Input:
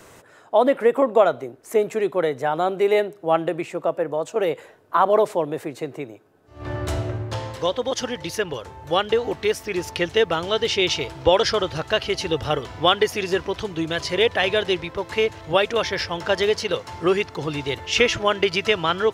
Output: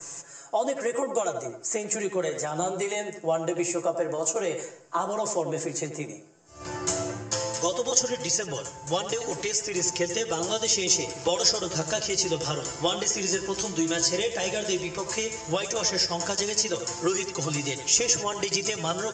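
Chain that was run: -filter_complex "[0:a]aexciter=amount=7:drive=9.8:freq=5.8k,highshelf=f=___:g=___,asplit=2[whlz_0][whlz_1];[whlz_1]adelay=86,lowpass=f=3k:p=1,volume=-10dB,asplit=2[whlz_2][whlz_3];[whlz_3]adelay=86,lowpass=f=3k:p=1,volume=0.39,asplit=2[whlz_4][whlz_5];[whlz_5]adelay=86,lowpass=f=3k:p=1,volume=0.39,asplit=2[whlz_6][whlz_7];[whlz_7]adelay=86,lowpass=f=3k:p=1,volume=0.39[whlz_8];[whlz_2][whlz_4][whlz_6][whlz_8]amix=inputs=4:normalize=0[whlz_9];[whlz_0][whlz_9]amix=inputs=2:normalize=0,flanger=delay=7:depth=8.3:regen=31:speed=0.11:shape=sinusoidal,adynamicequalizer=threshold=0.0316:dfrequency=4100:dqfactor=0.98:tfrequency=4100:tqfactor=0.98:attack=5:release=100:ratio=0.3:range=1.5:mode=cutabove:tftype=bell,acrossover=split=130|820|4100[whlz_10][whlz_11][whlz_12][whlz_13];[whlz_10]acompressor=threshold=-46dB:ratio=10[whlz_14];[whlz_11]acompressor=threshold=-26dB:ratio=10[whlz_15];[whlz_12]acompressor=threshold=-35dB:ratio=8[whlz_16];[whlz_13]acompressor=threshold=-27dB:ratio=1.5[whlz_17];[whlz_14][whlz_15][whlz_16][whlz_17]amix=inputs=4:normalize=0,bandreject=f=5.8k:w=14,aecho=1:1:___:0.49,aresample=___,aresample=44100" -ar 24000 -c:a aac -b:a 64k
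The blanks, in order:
2.4k, 5, 5.9, 16000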